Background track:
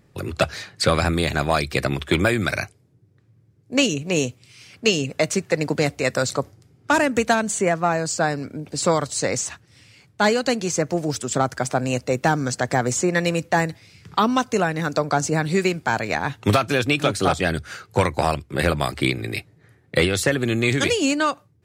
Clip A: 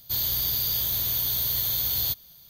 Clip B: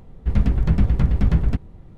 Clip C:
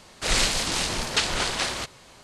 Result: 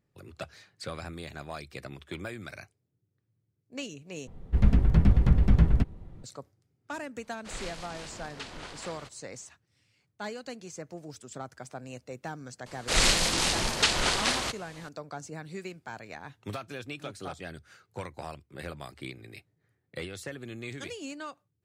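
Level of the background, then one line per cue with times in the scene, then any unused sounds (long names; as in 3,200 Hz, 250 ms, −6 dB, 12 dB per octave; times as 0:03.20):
background track −19.5 dB
0:04.27: overwrite with B −3 dB
0:07.23: mix in C −15 dB + high-shelf EQ 3,900 Hz −9.5 dB
0:12.66: mix in C −0.5 dB
not used: A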